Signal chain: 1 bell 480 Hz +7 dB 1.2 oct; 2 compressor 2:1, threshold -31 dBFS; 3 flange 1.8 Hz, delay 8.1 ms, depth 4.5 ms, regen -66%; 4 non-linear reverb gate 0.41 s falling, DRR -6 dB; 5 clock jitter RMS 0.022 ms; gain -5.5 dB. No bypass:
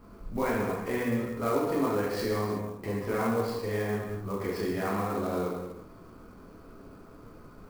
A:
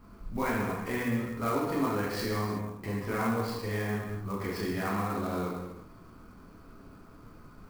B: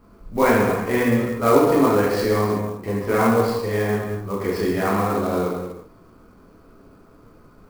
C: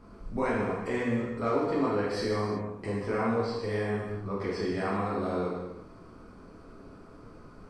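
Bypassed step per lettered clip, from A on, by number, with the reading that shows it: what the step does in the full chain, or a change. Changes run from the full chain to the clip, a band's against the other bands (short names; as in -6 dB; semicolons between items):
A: 1, 500 Hz band -5.0 dB; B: 2, mean gain reduction 7.0 dB; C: 5, 8 kHz band -6.0 dB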